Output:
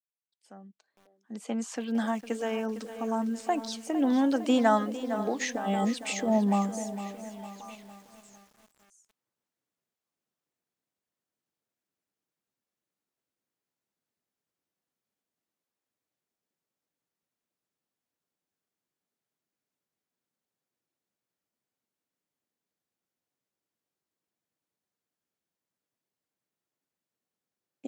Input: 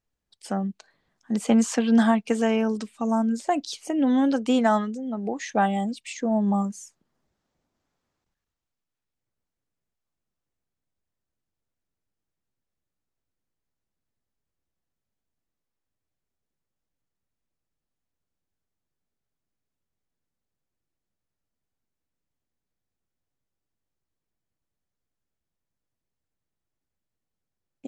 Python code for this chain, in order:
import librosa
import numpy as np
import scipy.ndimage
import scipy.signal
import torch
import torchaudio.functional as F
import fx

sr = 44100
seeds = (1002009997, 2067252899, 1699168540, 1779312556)

y = fx.fade_in_head(x, sr, length_s=5.69)
y = scipy.signal.sosfilt(scipy.signal.butter(2, 200.0, 'highpass', fs=sr, output='sos'), y)
y = fx.over_compress(y, sr, threshold_db=-29.0, ratio=-1.0, at=(5.41, 6.28))
y = fx.echo_stepped(y, sr, ms=542, hz=440.0, octaves=1.4, feedback_pct=70, wet_db=-10.5)
y = fx.echo_crushed(y, sr, ms=456, feedback_pct=55, bits=8, wet_db=-12)